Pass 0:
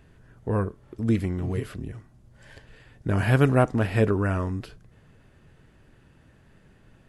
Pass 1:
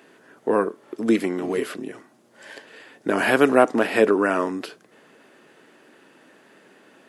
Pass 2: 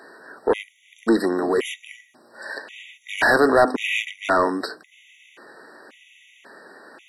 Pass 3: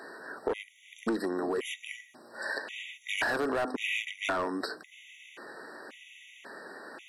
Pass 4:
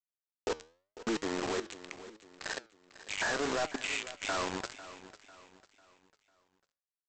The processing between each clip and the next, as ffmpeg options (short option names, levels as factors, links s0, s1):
-filter_complex "[0:a]highpass=f=270:w=0.5412,highpass=f=270:w=1.3066,asplit=2[s0][s1];[s1]alimiter=limit=0.106:level=0:latency=1:release=182,volume=0.891[s2];[s0][s2]amix=inputs=2:normalize=0,volume=1.58"
-filter_complex "[0:a]bandreject=f=51.27:t=h:w=4,bandreject=f=102.54:t=h:w=4,bandreject=f=153.81:t=h:w=4,bandreject=f=205.08:t=h:w=4,bandreject=f=256.35:t=h:w=4,bandreject=f=307.62:t=h:w=4,asplit=2[s0][s1];[s1]highpass=f=720:p=1,volume=11.2,asoftclip=type=tanh:threshold=0.794[s2];[s0][s2]amix=inputs=2:normalize=0,lowpass=f=5200:p=1,volume=0.501,afftfilt=real='re*gt(sin(2*PI*0.93*pts/sr)*(1-2*mod(floor(b*sr/1024/1900),2)),0)':imag='im*gt(sin(2*PI*0.93*pts/sr)*(1-2*mod(floor(b*sr/1024/1900),2)),0)':win_size=1024:overlap=0.75,volume=0.631"
-filter_complex "[0:a]asplit=2[s0][s1];[s1]aeval=exprs='0.2*(abs(mod(val(0)/0.2+3,4)-2)-1)':c=same,volume=0.668[s2];[s0][s2]amix=inputs=2:normalize=0,acompressor=threshold=0.0562:ratio=5,volume=0.596"
-af "aresample=16000,acrusher=bits=4:mix=0:aa=0.000001,aresample=44100,aecho=1:1:498|996|1494|1992:0.168|0.0688|0.0282|0.0116,flanger=delay=6.2:depth=7:regen=85:speed=0.82:shape=triangular"